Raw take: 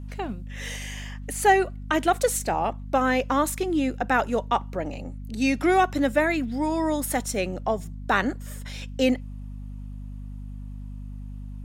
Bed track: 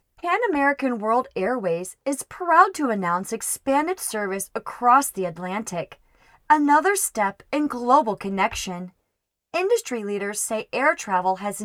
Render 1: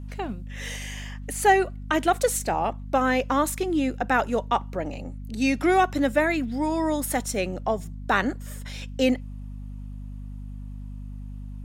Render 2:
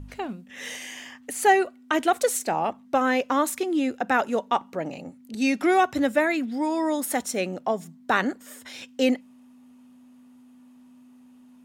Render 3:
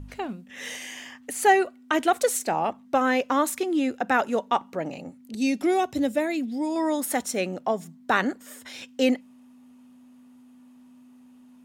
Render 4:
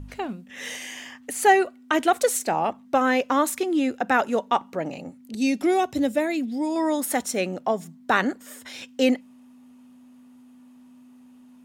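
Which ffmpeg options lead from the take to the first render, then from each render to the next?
-af anull
-af "bandreject=f=50:t=h:w=4,bandreject=f=100:t=h:w=4,bandreject=f=150:t=h:w=4,bandreject=f=200:t=h:w=4"
-filter_complex "[0:a]asettb=1/sr,asplit=3[s0][s1][s2];[s0]atrim=end=5.354[s3];[s1]atrim=start=5.35:end=6.76,asetpts=PTS-STARTPTS,afade=t=in:d=0.004:c=qsin,afade=t=out:st=1.406:d=0.004:c=qsin,equalizer=f=1400:w=0.95:g=-11.5[s4];[s2]atrim=start=6.756[s5];[s3][s4]acrossfade=d=0.004:c1=hsin:c2=qsin[s6];[s6][s5]acrossfade=d=0.004:c1=qsin:c2=hsin"
-af "volume=1.19"

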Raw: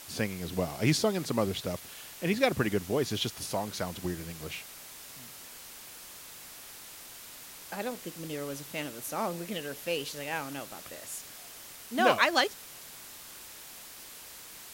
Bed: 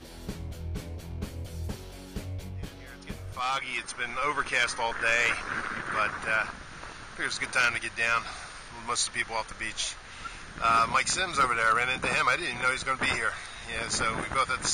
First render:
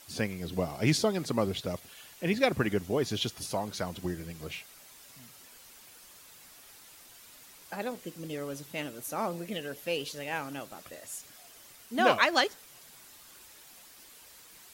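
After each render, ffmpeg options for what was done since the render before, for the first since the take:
-af "afftdn=nr=8:nf=-48"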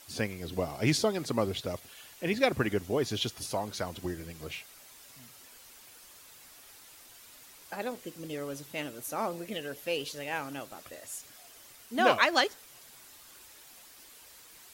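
-af "equalizer=f=180:t=o:w=0.39:g=-5.5"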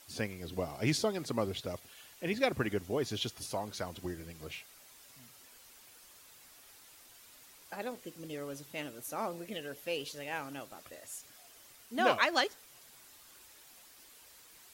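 -af "volume=0.631"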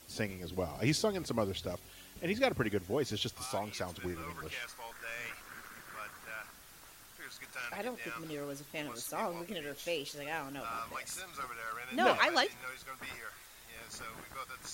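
-filter_complex "[1:a]volume=0.133[s0];[0:a][s0]amix=inputs=2:normalize=0"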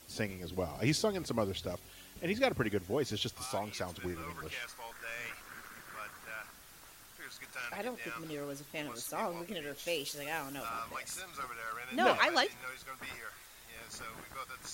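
-filter_complex "[0:a]asettb=1/sr,asplit=3[s0][s1][s2];[s0]atrim=end=9.874[s3];[s1]atrim=start=9.87:end=10.69,asetpts=PTS-STARTPTS,afade=t=in:d=0.004:c=qsin,afade=t=out:st=0.816:d=0.004:c=qsin,highshelf=f=5200:g=7.5[s4];[s2]atrim=start=10.686[s5];[s3][s4]acrossfade=d=0.004:c1=hsin:c2=qsin[s6];[s6][s5]acrossfade=d=0.004:c1=qsin:c2=hsin"

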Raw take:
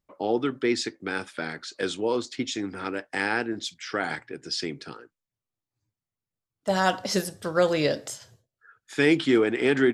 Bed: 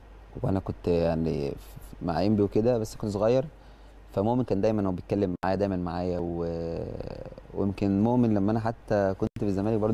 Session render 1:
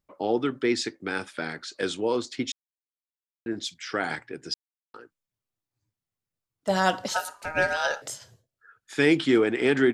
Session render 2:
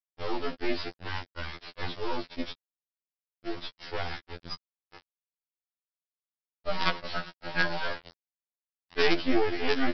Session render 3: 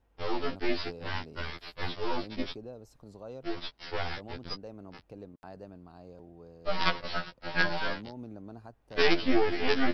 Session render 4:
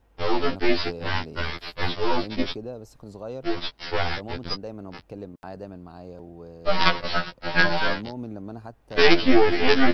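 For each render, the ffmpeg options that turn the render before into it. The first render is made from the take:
-filter_complex "[0:a]asettb=1/sr,asplit=3[s0][s1][s2];[s0]atrim=end=7.084[s3];[s1]atrim=start=7.08:end=8.02,asetpts=PTS-STARTPTS,afade=t=in:d=0.004:c=qsin,afade=t=out:st=0.936:d=0.004:c=qsin,aeval=exprs='val(0)*sin(2*PI*1100*n/s)':c=same[s4];[s2]atrim=start=8.016[s5];[s3][s4]acrossfade=d=0.004:c1=hsin:c2=qsin[s6];[s6][s5]acrossfade=d=0.004:c1=qsin:c2=hsin,asplit=5[s7][s8][s9][s10][s11];[s7]atrim=end=2.52,asetpts=PTS-STARTPTS,afade=t=out:st=2.516:d=0.004:c=hsin[s12];[s8]atrim=start=2.52:end=3.46,asetpts=PTS-STARTPTS,volume=0[s13];[s9]atrim=start=3.46:end=4.54,asetpts=PTS-STARTPTS,afade=t=in:d=0.004:c=hsin,afade=t=out:st=1.076:d=0.004:c=hsin[s14];[s10]atrim=start=4.54:end=4.94,asetpts=PTS-STARTPTS,volume=0[s15];[s11]atrim=start=4.94,asetpts=PTS-STARTPTS,afade=t=in:d=0.004:c=hsin[s16];[s12][s13][s14][s15][s16]concat=n=5:v=0:a=1"
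-af "aresample=11025,acrusher=bits=3:dc=4:mix=0:aa=0.000001,aresample=44100,afftfilt=real='re*2*eq(mod(b,4),0)':imag='im*2*eq(mod(b,4),0)':win_size=2048:overlap=0.75"
-filter_complex "[1:a]volume=0.0944[s0];[0:a][s0]amix=inputs=2:normalize=0"
-af "volume=2.66,alimiter=limit=0.708:level=0:latency=1"

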